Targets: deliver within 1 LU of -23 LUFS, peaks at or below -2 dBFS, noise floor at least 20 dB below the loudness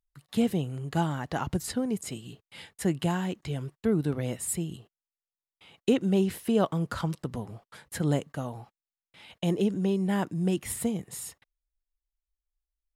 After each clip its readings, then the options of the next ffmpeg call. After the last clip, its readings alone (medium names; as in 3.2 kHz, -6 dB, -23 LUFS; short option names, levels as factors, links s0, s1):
loudness -30.0 LUFS; peak level -12.5 dBFS; loudness target -23.0 LUFS
-> -af "volume=2.24"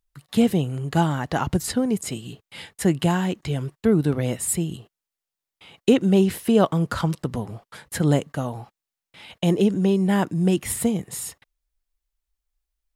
loudness -23.0 LUFS; peak level -5.5 dBFS; noise floor -88 dBFS